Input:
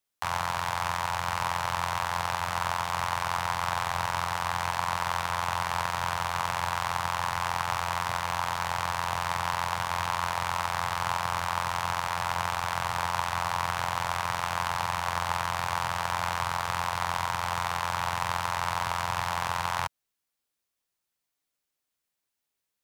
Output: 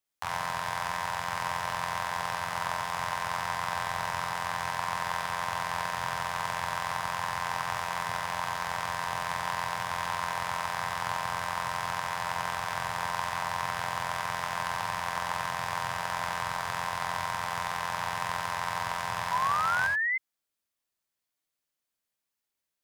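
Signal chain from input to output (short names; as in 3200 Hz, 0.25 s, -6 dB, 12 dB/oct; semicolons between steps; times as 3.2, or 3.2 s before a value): non-linear reverb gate 0.1 s rising, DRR 3 dB; painted sound rise, 19.31–20.18, 960–2100 Hz -24 dBFS; gain -4 dB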